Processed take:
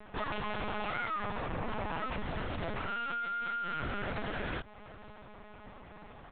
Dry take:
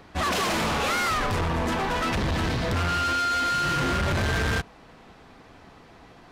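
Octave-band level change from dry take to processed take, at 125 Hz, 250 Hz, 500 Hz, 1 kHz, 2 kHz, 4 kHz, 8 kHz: -14.5 dB, -12.0 dB, -10.0 dB, -10.5 dB, -11.0 dB, -15.5 dB, under -40 dB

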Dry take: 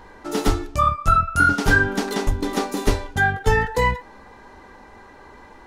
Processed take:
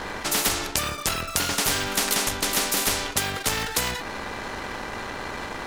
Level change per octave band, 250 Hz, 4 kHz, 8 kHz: -7.5, +8.0, +11.5 dB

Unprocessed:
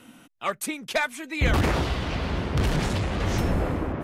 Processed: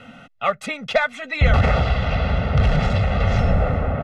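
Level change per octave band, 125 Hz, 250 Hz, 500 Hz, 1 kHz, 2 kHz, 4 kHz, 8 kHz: +7.5 dB, +2.0 dB, +6.0 dB, +6.0 dB, +5.0 dB, +2.0 dB, n/a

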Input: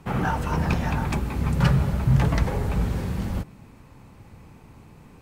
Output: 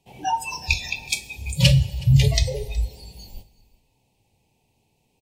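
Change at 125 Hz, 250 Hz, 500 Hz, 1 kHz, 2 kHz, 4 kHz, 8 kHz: +2.0 dB, -4.0 dB, -1.5 dB, n/a, +4.0 dB, +14.0 dB, +12.5 dB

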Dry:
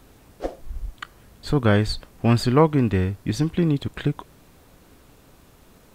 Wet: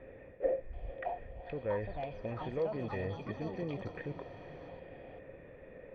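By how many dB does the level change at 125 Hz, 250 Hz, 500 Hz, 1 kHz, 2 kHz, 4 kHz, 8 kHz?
-20.5 dB, -20.5 dB, -10.5 dB, -13.5 dB, -14.5 dB, -24.0 dB, under -30 dB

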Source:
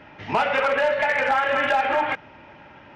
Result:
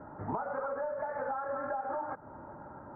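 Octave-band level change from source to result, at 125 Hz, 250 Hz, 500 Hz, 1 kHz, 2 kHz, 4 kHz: -5.5 dB, -9.0 dB, -12.5 dB, -13.5 dB, -23.5 dB, under -40 dB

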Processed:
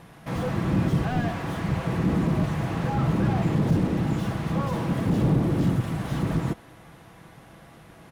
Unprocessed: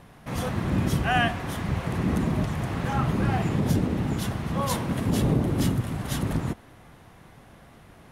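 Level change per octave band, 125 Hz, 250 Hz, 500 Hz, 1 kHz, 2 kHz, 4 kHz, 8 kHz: +1.5 dB, +2.0 dB, +1.0 dB, -2.0 dB, -4.5 dB, -5.5 dB, n/a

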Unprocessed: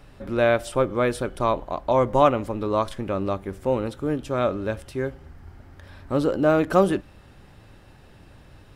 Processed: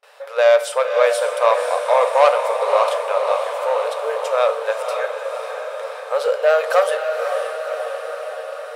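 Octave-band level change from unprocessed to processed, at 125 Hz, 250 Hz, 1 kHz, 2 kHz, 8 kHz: under -40 dB, under -35 dB, +6.5 dB, +7.5 dB, n/a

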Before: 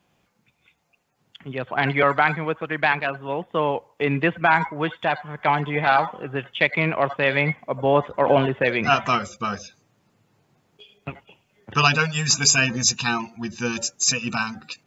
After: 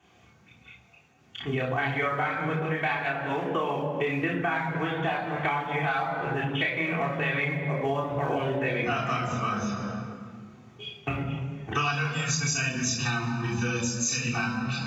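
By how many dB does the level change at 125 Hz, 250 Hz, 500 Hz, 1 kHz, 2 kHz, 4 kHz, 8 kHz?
-1.5 dB, -3.0 dB, -7.0 dB, -7.0 dB, -6.0 dB, -8.5 dB, n/a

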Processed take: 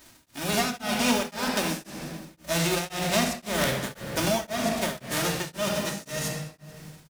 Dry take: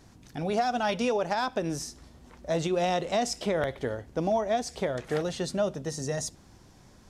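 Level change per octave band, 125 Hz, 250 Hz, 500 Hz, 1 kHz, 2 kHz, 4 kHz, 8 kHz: +3.0, +3.5, -2.0, -0.5, +6.5, +8.0, +7.5 dB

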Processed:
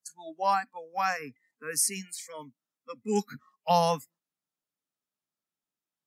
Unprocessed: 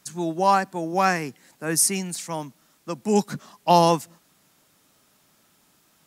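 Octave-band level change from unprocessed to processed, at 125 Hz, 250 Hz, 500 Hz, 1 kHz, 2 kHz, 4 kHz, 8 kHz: -10.0, -11.0, -8.0, -7.0, -6.5, -7.0, -6.5 dB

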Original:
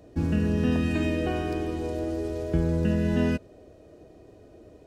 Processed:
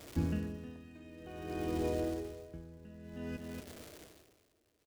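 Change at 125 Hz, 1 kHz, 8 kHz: -14.0, -9.5, -5.0 dB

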